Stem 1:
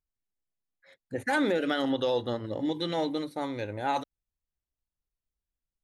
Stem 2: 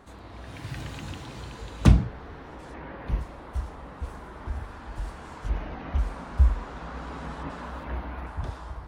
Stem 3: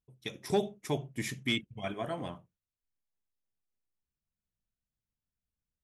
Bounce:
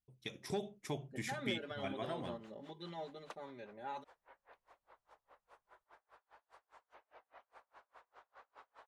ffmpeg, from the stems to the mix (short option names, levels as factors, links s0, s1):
-filter_complex "[0:a]aecho=1:1:5:0.99,volume=0.119[s0];[1:a]highpass=f=520:w=0.5412,highpass=f=520:w=1.3066,aeval=exprs='val(0)+0.000316*(sin(2*PI*50*n/s)+sin(2*PI*2*50*n/s)/2+sin(2*PI*3*50*n/s)/3+sin(2*PI*4*50*n/s)/4+sin(2*PI*5*50*n/s)/5)':c=same,aeval=exprs='val(0)*pow(10,-38*(0.5-0.5*cos(2*PI*4.9*n/s))/20)':c=same,adelay=1450,volume=0.2[s1];[2:a]equalizer=f=7900:w=0.32:g=6.5,acompressor=threshold=0.0224:ratio=2,volume=0.562[s2];[s0][s1][s2]amix=inputs=3:normalize=0,highshelf=f=5600:g=-11"